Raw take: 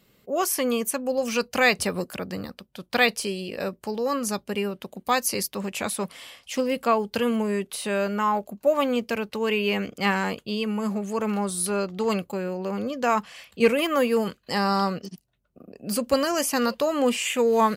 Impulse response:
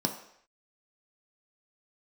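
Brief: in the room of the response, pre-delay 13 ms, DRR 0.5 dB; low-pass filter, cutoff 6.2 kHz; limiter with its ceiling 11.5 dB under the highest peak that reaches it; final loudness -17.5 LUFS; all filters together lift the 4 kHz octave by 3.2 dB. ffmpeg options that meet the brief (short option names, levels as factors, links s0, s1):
-filter_complex "[0:a]lowpass=6200,equalizer=f=4000:t=o:g=5,alimiter=limit=0.158:level=0:latency=1,asplit=2[s0][s1];[1:a]atrim=start_sample=2205,adelay=13[s2];[s1][s2]afir=irnorm=-1:irlink=0,volume=0.447[s3];[s0][s3]amix=inputs=2:normalize=0,volume=1.5"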